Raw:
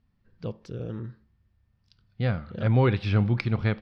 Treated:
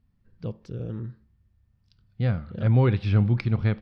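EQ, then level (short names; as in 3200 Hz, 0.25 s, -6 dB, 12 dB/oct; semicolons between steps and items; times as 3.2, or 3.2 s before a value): low shelf 290 Hz +7 dB; -3.5 dB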